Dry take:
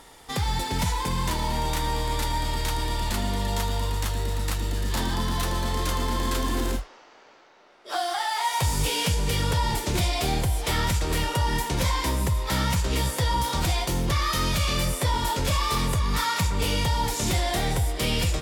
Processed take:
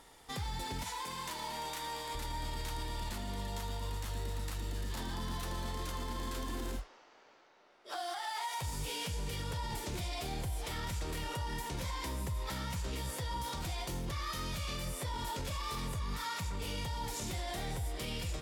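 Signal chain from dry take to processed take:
0:00.83–0:02.15: high-pass filter 620 Hz 6 dB per octave
brickwall limiter −21 dBFS, peak gain reduction 7.5 dB
level −9 dB

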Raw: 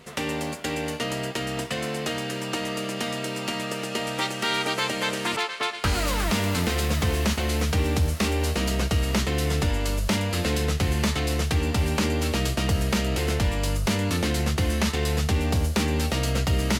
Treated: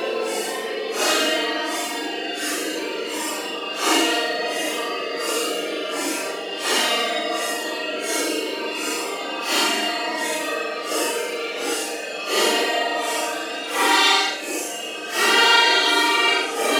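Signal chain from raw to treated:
reverb reduction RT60 0.99 s
Butterworth high-pass 300 Hz 36 dB per octave
extreme stretch with random phases 6×, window 0.05 s, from 0:01.89
on a send: flutter between parallel walls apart 7.3 metres, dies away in 0.41 s
on the sum: level +8.5 dB

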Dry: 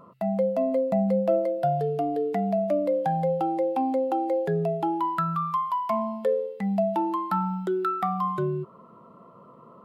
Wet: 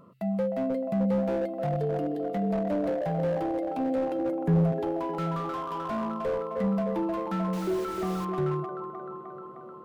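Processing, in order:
0:04.19–0:04.72: graphic EQ with 10 bands 125 Hz +6 dB, 250 Hz +10 dB, 500 Hz −9 dB, 1,000 Hz +10 dB, 2,000 Hz −5 dB, 4,000 Hz −12 dB
delay with a band-pass on its return 307 ms, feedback 71%, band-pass 690 Hz, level −3.5 dB
0:07.53–0:08.25: bit-depth reduction 6 bits, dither triangular
parametric band 870 Hz −10.5 dB 1.1 octaves
slew-rate limiting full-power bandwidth 29 Hz

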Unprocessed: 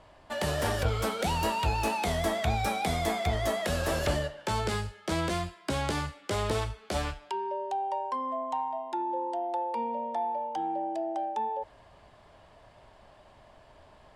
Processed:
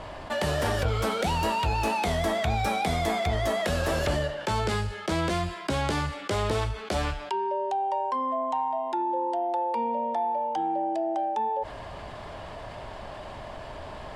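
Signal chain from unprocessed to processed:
high-shelf EQ 7,600 Hz −6 dB
envelope flattener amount 50%

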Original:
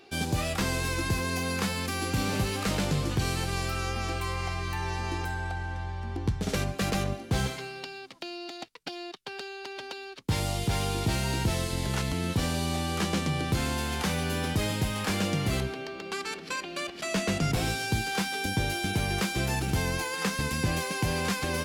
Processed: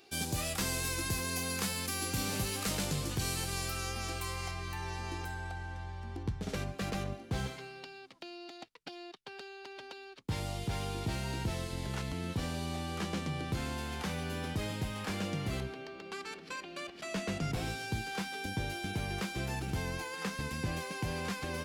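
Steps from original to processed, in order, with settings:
high-shelf EQ 5,100 Hz +12 dB, from 0:04.51 +4 dB, from 0:06.23 −4.5 dB
level −7.5 dB

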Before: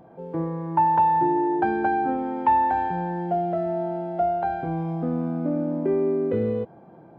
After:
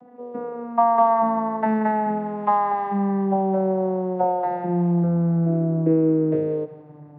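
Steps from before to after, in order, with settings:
vocoder with a gliding carrier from B3, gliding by −9 semitones
mains-hum notches 60/120/180/240 Hz
feedback echo with a high-pass in the loop 179 ms, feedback 54%, high-pass 760 Hz, level −13 dB
level +3 dB

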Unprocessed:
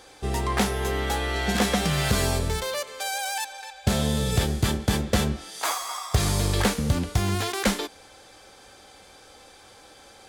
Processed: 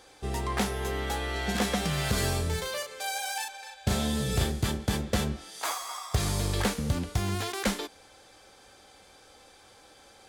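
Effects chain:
0:02.13–0:04.52: double-tracking delay 37 ms −4 dB
level −5 dB

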